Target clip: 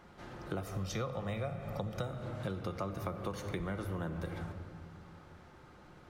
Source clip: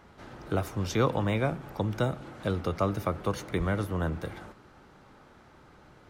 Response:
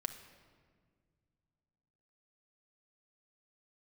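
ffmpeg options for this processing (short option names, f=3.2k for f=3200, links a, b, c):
-filter_complex "[0:a]asettb=1/sr,asplit=3[a][b][c];[a]atrim=end=0.634[d];[b]atrim=start=0.63:end=2.07,asetpts=PTS-STARTPTS,afade=t=in:d=0.004:c=qsin,afade=t=out:st=1.436:d=0.004:c=qsin,aecho=1:1:1.6:0.56,atrim=end_sample=63504[e];[c]atrim=start=2.066[f];[d][e]acrossfade=d=0.004:c1=hsin:c2=qsin[g];[g][f]acrossfade=d=0.004:c1=qsin:c2=hsin[h];[1:a]atrim=start_sample=2205[i];[h][i]afir=irnorm=-1:irlink=0,acompressor=threshold=-33dB:ratio=6,volume=-1.5dB"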